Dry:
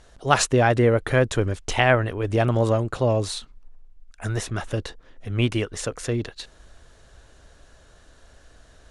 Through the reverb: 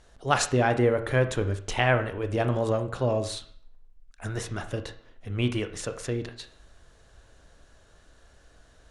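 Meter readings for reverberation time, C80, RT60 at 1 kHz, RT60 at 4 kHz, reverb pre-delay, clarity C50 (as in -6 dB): 0.55 s, 16.0 dB, 0.55 s, 0.50 s, 23 ms, 11.5 dB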